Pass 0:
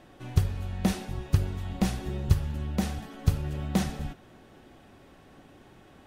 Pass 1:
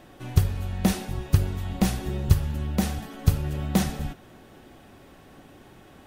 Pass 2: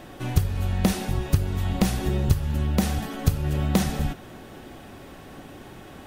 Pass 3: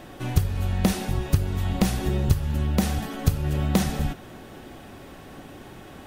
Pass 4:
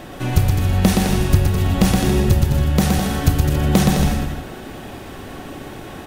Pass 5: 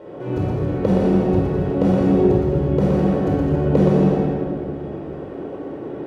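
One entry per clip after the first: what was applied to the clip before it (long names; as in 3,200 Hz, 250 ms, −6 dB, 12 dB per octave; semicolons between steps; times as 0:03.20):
high-shelf EQ 12,000 Hz +10.5 dB; level +3.5 dB
downward compressor 2.5 to 1, threshold −27 dBFS, peak gain reduction 10.5 dB; level +7 dB
no processing that can be heard
in parallel at −3.5 dB: soft clipping −20.5 dBFS, distortion −9 dB; on the sum: bouncing-ball delay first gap 120 ms, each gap 0.75×, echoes 5; level +3 dB
resonant band-pass 450 Hz, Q 1.9; convolution reverb RT60 1.8 s, pre-delay 21 ms, DRR −3.5 dB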